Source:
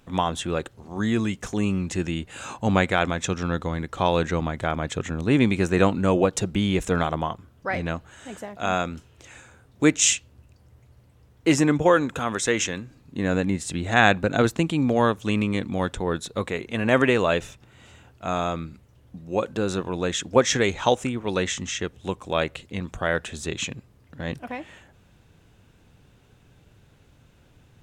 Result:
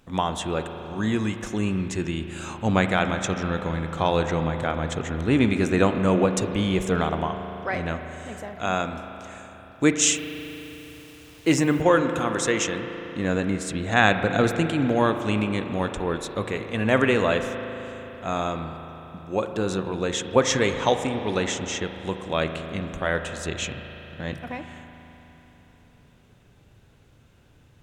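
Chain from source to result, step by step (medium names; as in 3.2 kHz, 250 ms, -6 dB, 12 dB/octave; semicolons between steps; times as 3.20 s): spring tank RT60 3.9 s, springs 37 ms, chirp 40 ms, DRR 7 dB; 10.15–11.82 s: word length cut 8-bit, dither none; trim -1 dB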